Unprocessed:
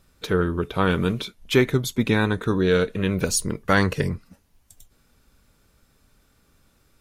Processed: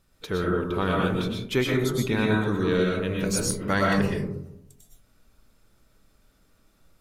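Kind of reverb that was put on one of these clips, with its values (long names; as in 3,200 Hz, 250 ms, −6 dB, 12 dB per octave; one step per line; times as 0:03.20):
comb and all-pass reverb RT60 0.74 s, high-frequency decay 0.3×, pre-delay 80 ms, DRR −2.5 dB
level −6.5 dB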